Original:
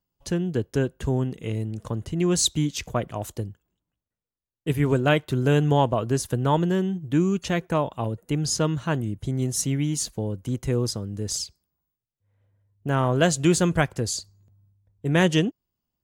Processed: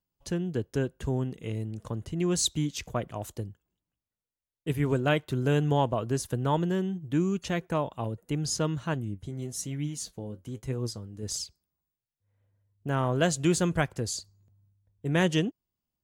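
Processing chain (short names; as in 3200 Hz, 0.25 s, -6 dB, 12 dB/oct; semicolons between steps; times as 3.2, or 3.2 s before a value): 8.94–11.23 flange 1.1 Hz, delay 6.8 ms, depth 7.3 ms, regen +55%; gain -5 dB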